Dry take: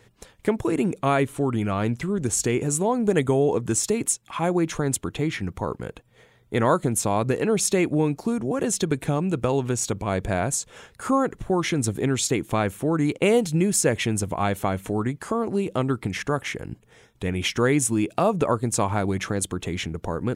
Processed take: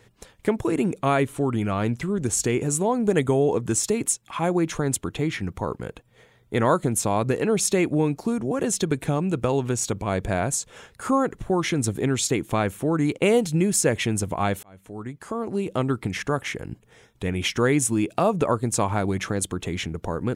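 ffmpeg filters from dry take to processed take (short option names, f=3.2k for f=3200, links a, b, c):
-filter_complex "[0:a]asplit=2[a][b];[a]atrim=end=14.63,asetpts=PTS-STARTPTS,afade=t=out:st=14.626:d=0.004:c=hsin[c];[b]atrim=start=14.63,asetpts=PTS-STARTPTS,afade=t=in:d=1.18[d];[c][d]concat=n=2:v=0:a=1"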